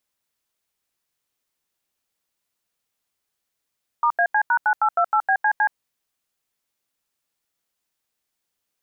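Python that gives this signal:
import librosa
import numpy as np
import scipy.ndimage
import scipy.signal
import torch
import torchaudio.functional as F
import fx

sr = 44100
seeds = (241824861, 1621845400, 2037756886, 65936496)

y = fx.dtmf(sr, digits='*AC#9828BCC', tone_ms=73, gap_ms=84, level_db=-18.0)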